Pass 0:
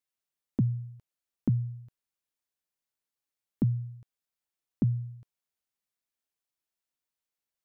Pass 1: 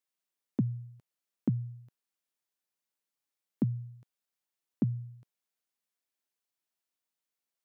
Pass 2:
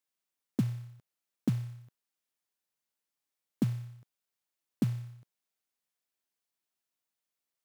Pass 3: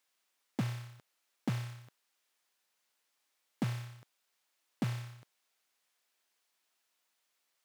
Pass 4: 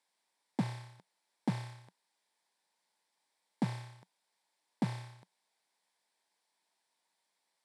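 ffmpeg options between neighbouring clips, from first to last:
ffmpeg -i in.wav -af "highpass=150" out.wav
ffmpeg -i in.wav -af "acrusher=bits=5:mode=log:mix=0:aa=0.000001" out.wav
ffmpeg -i in.wav -filter_complex "[0:a]asplit=2[link_01][link_02];[link_02]highpass=frequency=720:poles=1,volume=24dB,asoftclip=type=tanh:threshold=-18.5dB[link_03];[link_01][link_03]amix=inputs=2:normalize=0,lowpass=frequency=5600:poles=1,volume=-6dB,volume=-5.5dB" out.wav
ffmpeg -i in.wav -af "highpass=150,equalizer=frequency=180:width_type=q:width=4:gain=6,equalizer=frequency=900:width_type=q:width=4:gain=8,equalizer=frequency=1300:width_type=q:width=4:gain=-9,equalizer=frequency=2800:width_type=q:width=4:gain=-8,equalizer=frequency=6500:width_type=q:width=4:gain=-8,lowpass=frequency=10000:width=0.5412,lowpass=frequency=10000:width=1.3066,volume=1dB" out.wav

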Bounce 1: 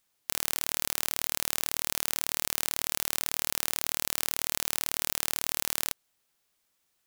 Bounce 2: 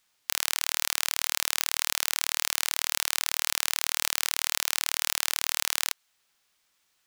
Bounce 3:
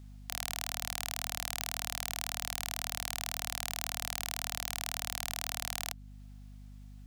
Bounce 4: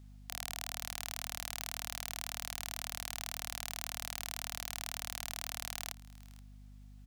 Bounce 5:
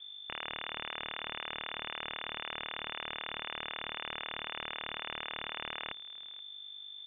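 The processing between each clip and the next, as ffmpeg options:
ffmpeg -i in.wav -filter_complex "[0:a]acrossover=split=870|7500[link_01][link_02][link_03];[link_01]alimiter=level_in=15dB:limit=-24dB:level=0:latency=1:release=365,volume=-15dB[link_04];[link_02]acontrast=77[link_05];[link_04][link_05][link_03]amix=inputs=3:normalize=0" out.wav
ffmpeg -i in.wav -af "equalizer=frequency=710:width=3.2:gain=13,alimiter=limit=-12dB:level=0:latency=1:release=321,aeval=exprs='val(0)+0.00398*(sin(2*PI*50*n/s)+sin(2*PI*2*50*n/s)/2+sin(2*PI*3*50*n/s)/3+sin(2*PI*4*50*n/s)/4+sin(2*PI*5*50*n/s)/5)':channel_layout=same" out.wav
ffmpeg -i in.wav -af "aecho=1:1:477:0.0794,volume=-4dB" out.wav
ffmpeg -i in.wav -af "lowpass=frequency=3100:width_type=q:width=0.5098,lowpass=frequency=3100:width_type=q:width=0.6013,lowpass=frequency=3100:width_type=q:width=0.9,lowpass=frequency=3100:width_type=q:width=2.563,afreqshift=-3600,volume=5.5dB" out.wav

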